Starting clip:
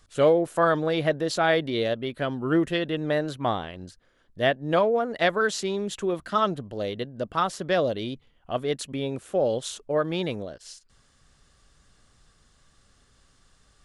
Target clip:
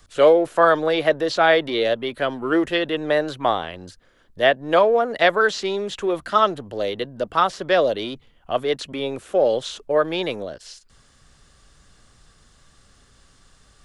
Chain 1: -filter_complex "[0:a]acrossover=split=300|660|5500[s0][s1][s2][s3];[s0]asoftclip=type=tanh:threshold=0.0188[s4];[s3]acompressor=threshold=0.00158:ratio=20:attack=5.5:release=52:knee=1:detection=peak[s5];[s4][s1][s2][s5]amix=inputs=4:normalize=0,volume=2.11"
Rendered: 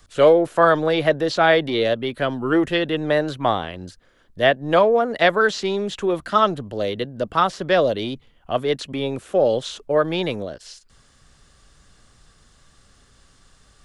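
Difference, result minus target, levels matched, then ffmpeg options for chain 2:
saturation: distortion -6 dB
-filter_complex "[0:a]acrossover=split=300|660|5500[s0][s1][s2][s3];[s0]asoftclip=type=tanh:threshold=0.00501[s4];[s3]acompressor=threshold=0.00158:ratio=20:attack=5.5:release=52:knee=1:detection=peak[s5];[s4][s1][s2][s5]amix=inputs=4:normalize=0,volume=2.11"

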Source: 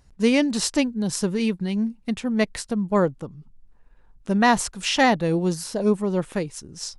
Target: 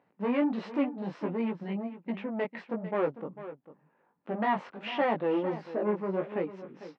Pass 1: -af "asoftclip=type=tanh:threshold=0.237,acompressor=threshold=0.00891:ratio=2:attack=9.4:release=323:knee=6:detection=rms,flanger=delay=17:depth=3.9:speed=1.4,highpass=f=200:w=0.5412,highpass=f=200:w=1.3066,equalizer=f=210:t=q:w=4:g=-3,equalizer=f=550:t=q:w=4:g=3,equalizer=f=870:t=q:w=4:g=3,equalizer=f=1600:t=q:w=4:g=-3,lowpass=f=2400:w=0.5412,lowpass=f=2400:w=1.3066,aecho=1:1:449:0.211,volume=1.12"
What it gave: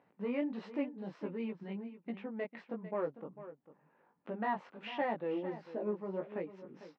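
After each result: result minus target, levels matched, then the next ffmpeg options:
compression: peak gain reduction +13.5 dB; saturation: distortion -9 dB
-af "asoftclip=type=tanh:threshold=0.237,flanger=delay=17:depth=3.9:speed=1.4,highpass=f=200:w=0.5412,highpass=f=200:w=1.3066,equalizer=f=210:t=q:w=4:g=-3,equalizer=f=550:t=q:w=4:g=3,equalizer=f=870:t=q:w=4:g=3,equalizer=f=1600:t=q:w=4:g=-3,lowpass=f=2400:w=0.5412,lowpass=f=2400:w=1.3066,aecho=1:1:449:0.211,volume=1.12"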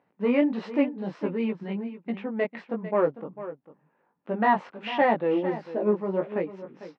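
saturation: distortion -9 dB
-af "asoftclip=type=tanh:threshold=0.075,flanger=delay=17:depth=3.9:speed=1.4,highpass=f=200:w=0.5412,highpass=f=200:w=1.3066,equalizer=f=210:t=q:w=4:g=-3,equalizer=f=550:t=q:w=4:g=3,equalizer=f=870:t=q:w=4:g=3,equalizer=f=1600:t=q:w=4:g=-3,lowpass=f=2400:w=0.5412,lowpass=f=2400:w=1.3066,aecho=1:1:449:0.211,volume=1.12"

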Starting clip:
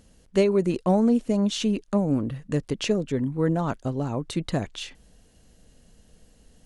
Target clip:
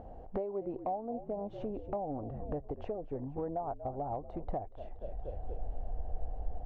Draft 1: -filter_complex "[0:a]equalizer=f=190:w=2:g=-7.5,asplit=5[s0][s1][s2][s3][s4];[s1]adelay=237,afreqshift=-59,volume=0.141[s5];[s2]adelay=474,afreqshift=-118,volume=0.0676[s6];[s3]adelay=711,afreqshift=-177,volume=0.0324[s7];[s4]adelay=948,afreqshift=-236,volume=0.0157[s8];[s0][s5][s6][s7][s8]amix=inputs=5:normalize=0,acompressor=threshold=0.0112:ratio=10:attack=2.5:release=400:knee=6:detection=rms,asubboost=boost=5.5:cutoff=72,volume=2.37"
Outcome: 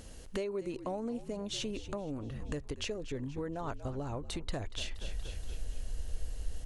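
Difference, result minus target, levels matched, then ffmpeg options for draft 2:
1 kHz band -7.0 dB
-filter_complex "[0:a]lowpass=f=750:t=q:w=8,equalizer=f=190:w=2:g=-7.5,asplit=5[s0][s1][s2][s3][s4];[s1]adelay=237,afreqshift=-59,volume=0.141[s5];[s2]adelay=474,afreqshift=-118,volume=0.0676[s6];[s3]adelay=711,afreqshift=-177,volume=0.0324[s7];[s4]adelay=948,afreqshift=-236,volume=0.0157[s8];[s0][s5][s6][s7][s8]amix=inputs=5:normalize=0,acompressor=threshold=0.0112:ratio=10:attack=2.5:release=400:knee=6:detection=rms,asubboost=boost=5.5:cutoff=72,volume=2.37"

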